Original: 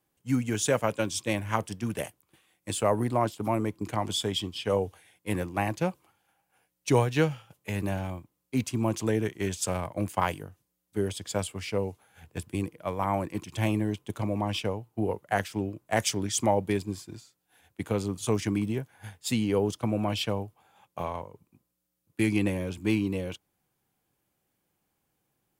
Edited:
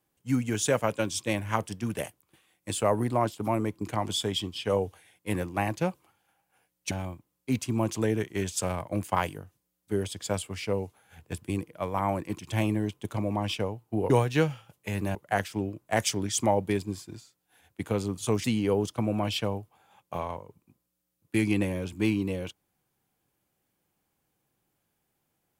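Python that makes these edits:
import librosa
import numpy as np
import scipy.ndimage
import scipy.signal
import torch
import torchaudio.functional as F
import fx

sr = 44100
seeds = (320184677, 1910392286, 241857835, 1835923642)

y = fx.edit(x, sr, fx.move(start_s=6.91, length_s=1.05, to_s=15.15),
    fx.cut(start_s=18.44, length_s=0.85), tone=tone)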